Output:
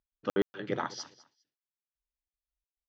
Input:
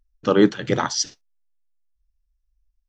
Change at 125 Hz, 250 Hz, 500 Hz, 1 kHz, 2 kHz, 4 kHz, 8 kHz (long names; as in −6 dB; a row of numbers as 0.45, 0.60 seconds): −15.5, −16.0, −12.5, −11.0, −11.5, −16.5, −21.0 decibels